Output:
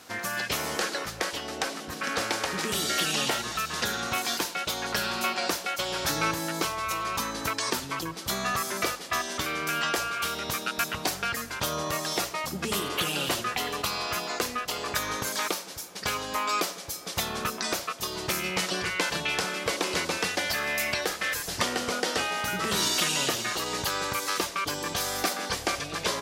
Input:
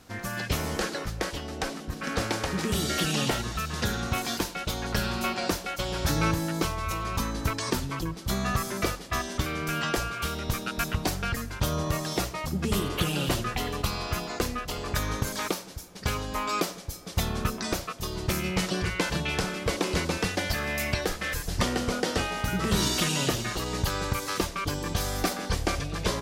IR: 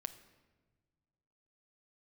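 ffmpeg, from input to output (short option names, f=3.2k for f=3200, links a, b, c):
-filter_complex "[0:a]highpass=f=620:p=1,asplit=2[a][b];[b]acompressor=threshold=-39dB:ratio=6,volume=2.5dB[c];[a][c]amix=inputs=2:normalize=0"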